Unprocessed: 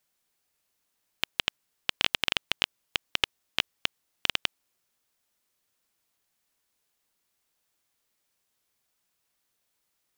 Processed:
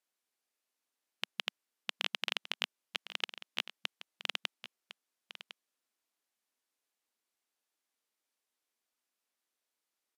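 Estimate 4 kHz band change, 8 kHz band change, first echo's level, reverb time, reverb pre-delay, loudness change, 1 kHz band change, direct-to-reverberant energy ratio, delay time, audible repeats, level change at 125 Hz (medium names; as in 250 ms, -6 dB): -8.5 dB, -9.5 dB, -13.5 dB, no reverb, no reverb, -8.5 dB, -8.0 dB, no reverb, 1056 ms, 1, under -25 dB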